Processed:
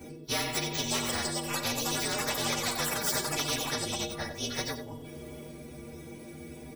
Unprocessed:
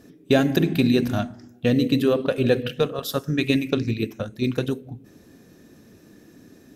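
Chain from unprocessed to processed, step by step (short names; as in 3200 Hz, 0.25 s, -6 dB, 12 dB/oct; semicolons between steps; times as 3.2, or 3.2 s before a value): inharmonic rescaling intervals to 115%; echoes that change speed 0.692 s, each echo +6 st, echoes 3, each echo -6 dB; metallic resonator 71 Hz, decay 0.3 s, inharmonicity 0.03; on a send: echo 91 ms -14 dB; on the sum: spectral compressor 4:1; gain -1.5 dB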